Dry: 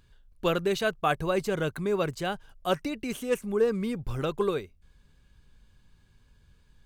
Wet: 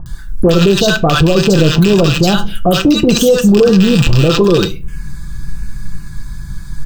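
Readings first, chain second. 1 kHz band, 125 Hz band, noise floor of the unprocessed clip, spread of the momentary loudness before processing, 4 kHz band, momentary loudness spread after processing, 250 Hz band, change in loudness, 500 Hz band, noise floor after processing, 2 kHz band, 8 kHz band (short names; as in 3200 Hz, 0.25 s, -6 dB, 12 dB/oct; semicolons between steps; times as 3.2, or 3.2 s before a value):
+12.5 dB, +24.0 dB, -62 dBFS, 7 LU, +22.5 dB, 21 LU, +22.0 dB, +18.5 dB, +16.0 dB, -26 dBFS, +15.5 dB, +22.5 dB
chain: rattling part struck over -35 dBFS, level -17 dBFS; bell 910 Hz -4 dB 2.3 oct; comb 5.9 ms, depth 54%; compressor 10:1, threshold -32 dBFS, peak gain reduction 13.5 dB; overloaded stage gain 30 dB; envelope phaser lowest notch 400 Hz, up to 2200 Hz, full sweep at -35.5 dBFS; bands offset in time lows, highs 60 ms, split 990 Hz; shoebox room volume 140 m³, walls furnished, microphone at 0.41 m; maximiser +35 dB; gain -1 dB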